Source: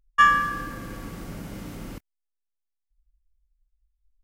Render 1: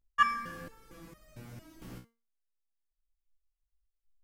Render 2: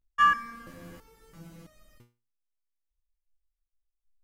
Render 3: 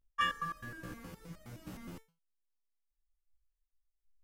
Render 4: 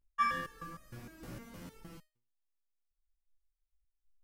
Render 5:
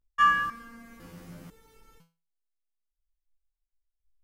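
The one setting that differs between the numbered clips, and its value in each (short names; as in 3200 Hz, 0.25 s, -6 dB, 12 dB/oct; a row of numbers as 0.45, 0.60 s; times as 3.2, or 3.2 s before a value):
stepped resonator, rate: 4.4, 3, 9.6, 6.5, 2 Hz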